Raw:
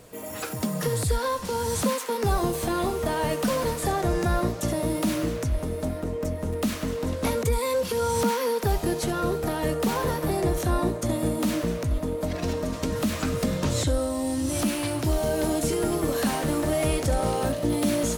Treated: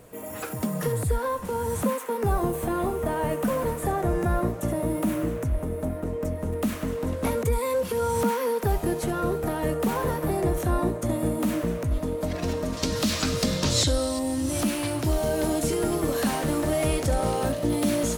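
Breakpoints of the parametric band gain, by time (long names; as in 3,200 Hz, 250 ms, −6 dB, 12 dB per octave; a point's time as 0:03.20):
parametric band 4,700 Hz 1.4 octaves
−7.5 dB
from 0:00.92 −14.5 dB
from 0:06.03 −8 dB
from 0:11.92 −1 dB
from 0:12.77 +10.5 dB
from 0:14.19 −1 dB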